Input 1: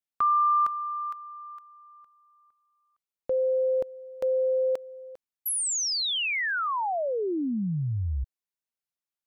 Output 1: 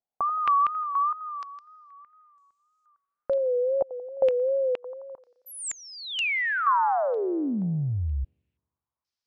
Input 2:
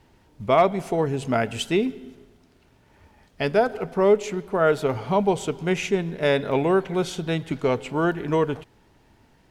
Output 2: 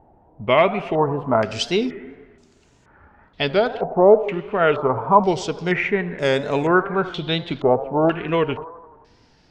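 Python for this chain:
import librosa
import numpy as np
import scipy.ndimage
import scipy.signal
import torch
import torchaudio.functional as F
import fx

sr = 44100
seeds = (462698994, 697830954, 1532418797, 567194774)

y = fx.echo_wet_bandpass(x, sr, ms=86, feedback_pct=62, hz=770.0, wet_db=-14.0)
y = fx.wow_flutter(y, sr, seeds[0], rate_hz=2.1, depth_cents=94.0)
y = fx.filter_held_lowpass(y, sr, hz=2.1, low_hz=750.0, high_hz=7100.0)
y = F.gain(torch.from_numpy(y), 1.0).numpy()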